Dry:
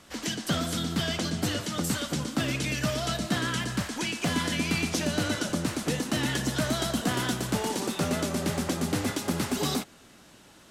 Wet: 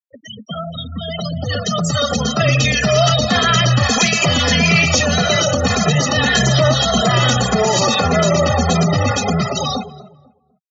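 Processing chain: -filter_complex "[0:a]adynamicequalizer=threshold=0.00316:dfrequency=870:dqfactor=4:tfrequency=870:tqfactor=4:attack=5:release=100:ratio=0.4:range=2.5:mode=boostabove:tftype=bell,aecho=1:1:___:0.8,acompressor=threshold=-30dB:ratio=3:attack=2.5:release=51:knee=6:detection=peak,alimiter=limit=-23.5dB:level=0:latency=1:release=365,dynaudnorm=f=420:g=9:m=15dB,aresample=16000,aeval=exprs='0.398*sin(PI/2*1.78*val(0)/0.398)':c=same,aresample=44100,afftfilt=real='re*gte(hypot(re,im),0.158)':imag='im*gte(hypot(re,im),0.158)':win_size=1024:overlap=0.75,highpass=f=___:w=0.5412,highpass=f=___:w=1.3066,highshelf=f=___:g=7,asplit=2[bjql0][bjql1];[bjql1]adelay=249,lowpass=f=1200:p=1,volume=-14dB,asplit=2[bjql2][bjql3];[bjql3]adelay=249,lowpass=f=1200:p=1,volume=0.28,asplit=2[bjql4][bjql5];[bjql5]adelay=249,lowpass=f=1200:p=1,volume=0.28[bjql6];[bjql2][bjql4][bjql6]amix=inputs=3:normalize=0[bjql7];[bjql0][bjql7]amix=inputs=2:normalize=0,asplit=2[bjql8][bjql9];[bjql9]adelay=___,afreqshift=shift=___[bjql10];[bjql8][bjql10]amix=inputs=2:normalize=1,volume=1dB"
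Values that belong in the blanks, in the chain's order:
1.6, 74, 74, 6100, 2.5, -1.7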